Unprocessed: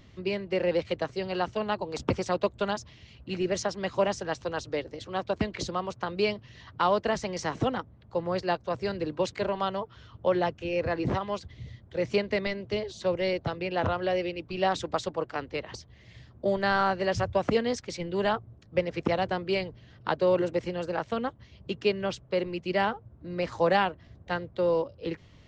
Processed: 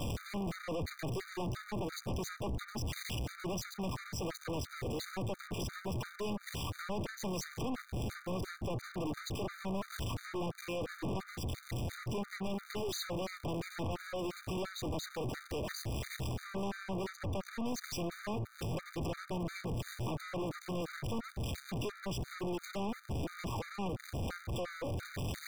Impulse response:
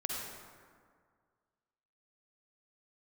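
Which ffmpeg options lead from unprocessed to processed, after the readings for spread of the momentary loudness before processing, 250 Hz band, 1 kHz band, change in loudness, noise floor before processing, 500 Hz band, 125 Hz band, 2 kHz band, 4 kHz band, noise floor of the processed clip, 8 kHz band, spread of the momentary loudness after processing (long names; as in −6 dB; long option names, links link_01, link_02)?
10 LU, −6.5 dB, −13.0 dB, −10.0 dB, −55 dBFS, −13.5 dB, −1.5 dB, −10.5 dB, −7.0 dB, −55 dBFS, −1.0 dB, 2 LU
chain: -filter_complex "[0:a]aeval=exprs='val(0)+0.5*0.0266*sgn(val(0))':channel_layout=same,acrossover=split=370[link_01][link_02];[link_02]acompressor=threshold=-38dB:ratio=5[link_03];[link_01][link_03]amix=inputs=2:normalize=0,aeval=exprs='(tanh(158*val(0)+0.35)-tanh(0.35))/158':channel_layout=same,asplit=2[link_04][link_05];[1:a]atrim=start_sample=2205,asetrate=66150,aresample=44100,adelay=79[link_06];[link_05][link_06]afir=irnorm=-1:irlink=0,volume=-21.5dB[link_07];[link_04][link_07]amix=inputs=2:normalize=0,afftfilt=real='re*gt(sin(2*PI*2.9*pts/sr)*(1-2*mod(floor(b*sr/1024/1200),2)),0)':imag='im*gt(sin(2*PI*2.9*pts/sr)*(1-2*mod(floor(b*sr/1024/1200),2)),0)':win_size=1024:overlap=0.75,volume=9dB"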